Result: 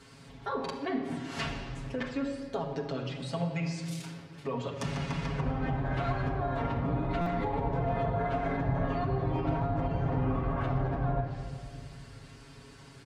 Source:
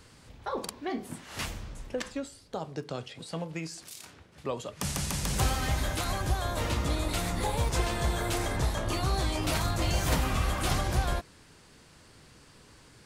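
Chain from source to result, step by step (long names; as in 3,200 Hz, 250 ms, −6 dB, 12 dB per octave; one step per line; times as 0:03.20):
high-pass filter 44 Hz 12 dB per octave
high-shelf EQ 6,500 Hz −7 dB
treble cut that deepens with the level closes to 920 Hz, closed at −25.5 dBFS
comb filter 7.3 ms, depth 92%
brickwall limiter −23.5 dBFS, peak gain reduction 9.5 dB
rectangular room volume 3,500 cubic metres, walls mixed, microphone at 1.6 metres
buffer that repeats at 0:07.21, samples 256, times 8
level −1 dB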